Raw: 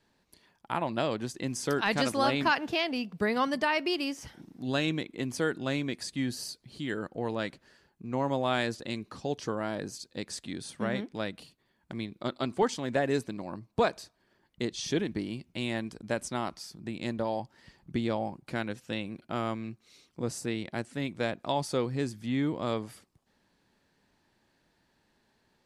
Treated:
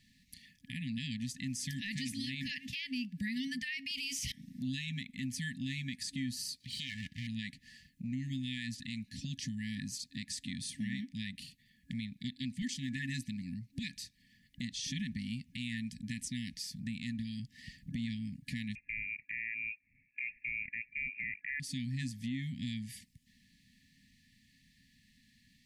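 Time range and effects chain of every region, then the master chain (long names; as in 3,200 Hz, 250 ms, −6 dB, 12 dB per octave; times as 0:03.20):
0:03.91–0:04.32: drawn EQ curve 200 Hz 0 dB, 1,200 Hz −27 dB, 2,300 Hz +7 dB + level that may fall only so fast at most 21 dB per second
0:06.60–0:07.27: lower of the sound and its delayed copy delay 1.3 ms + high-pass filter 72 Hz 24 dB per octave + parametric band 3,700 Hz +10.5 dB 2.4 octaves
0:18.75–0:21.60: voice inversion scrambler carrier 2,600 Hz + noise gate −57 dBFS, range −8 dB
whole clip: brick-wall band-stop 270–1,700 Hz; downward compressor 2 to 1, threshold −48 dBFS; brickwall limiter −35.5 dBFS; level +6.5 dB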